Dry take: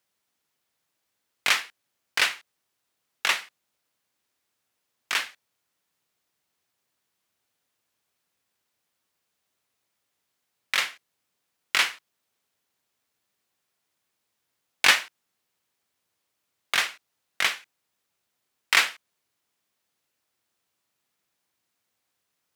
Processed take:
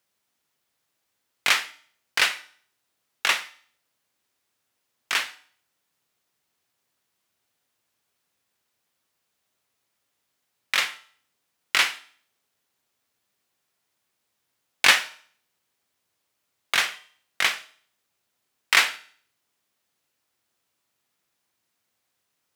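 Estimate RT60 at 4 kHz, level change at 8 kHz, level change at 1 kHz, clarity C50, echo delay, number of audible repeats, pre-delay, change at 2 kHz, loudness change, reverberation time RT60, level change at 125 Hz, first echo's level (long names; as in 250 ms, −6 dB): 0.50 s, +2.0 dB, +2.0 dB, 17.0 dB, no echo audible, no echo audible, 7 ms, +1.5 dB, +2.0 dB, 0.50 s, can't be measured, no echo audible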